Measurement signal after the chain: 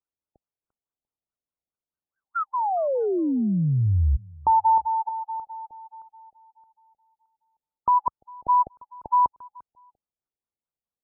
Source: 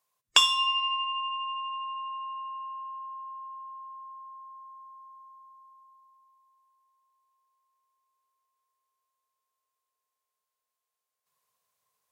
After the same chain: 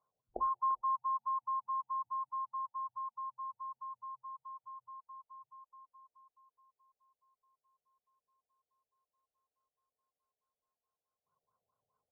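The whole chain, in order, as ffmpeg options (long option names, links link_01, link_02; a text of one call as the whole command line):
ffmpeg -i in.wav -filter_complex "[0:a]equalizer=frequency=63:width_type=o:width=2.4:gain=5,asplit=2[link_01][link_02];[link_02]adelay=346,lowpass=frequency=3200:poles=1,volume=-23.5dB,asplit=2[link_03][link_04];[link_04]adelay=346,lowpass=frequency=3200:poles=1,volume=0.25[link_05];[link_01][link_03][link_05]amix=inputs=3:normalize=0,afftfilt=real='re*lt(b*sr/1024,800*pow(1600/800,0.5+0.5*sin(2*PI*4.7*pts/sr)))':imag='im*lt(b*sr/1024,800*pow(1600/800,0.5+0.5*sin(2*PI*4.7*pts/sr)))':win_size=1024:overlap=0.75" out.wav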